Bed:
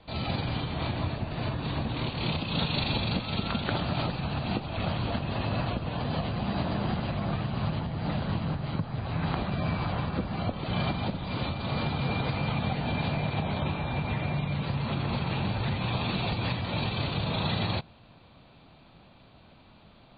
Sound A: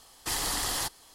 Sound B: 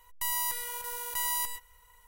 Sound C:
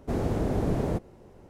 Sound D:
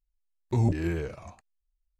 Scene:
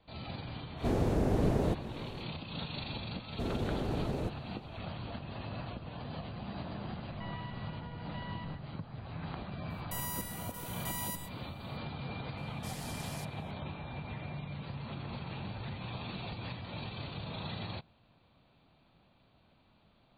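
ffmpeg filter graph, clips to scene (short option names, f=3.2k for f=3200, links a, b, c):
-filter_complex "[3:a]asplit=2[a][b];[2:a]asplit=2[c][d];[0:a]volume=-11.5dB[e];[a]acompressor=mode=upward:threshold=-32dB:ratio=2.5:attack=3.2:release=140:knee=2.83:detection=peak[f];[b]alimiter=limit=-20.5dB:level=0:latency=1:release=21[g];[c]aresample=8000,aresample=44100[h];[f]atrim=end=1.49,asetpts=PTS-STARTPTS,volume=-2dB,afade=t=in:d=0.05,afade=t=out:st=1.44:d=0.05,adelay=760[i];[g]atrim=end=1.49,asetpts=PTS-STARTPTS,volume=-6.5dB,afade=t=in:d=0.004:c=hsin,afade=t=out:st=1.486:d=0.004:c=hsin,adelay=3310[j];[h]atrim=end=2.07,asetpts=PTS-STARTPTS,volume=-11dB,afade=t=in:d=0.004:c=hsin,afade=t=out:st=2.066:d=0.004:c=hsin,adelay=6990[k];[d]atrim=end=2.07,asetpts=PTS-STARTPTS,volume=-8.5dB,afade=t=in:d=0.004:c=hsin,afade=t=out:st=2.066:d=0.004:c=hsin,adelay=427770S[l];[1:a]atrim=end=1.14,asetpts=PTS-STARTPTS,volume=-17dB,afade=t=in:d=0.004:c=hsin,afade=t=out:st=1.136:d=0.004:c=hsin,adelay=12370[m];[e][i][j][k][l][m]amix=inputs=6:normalize=0"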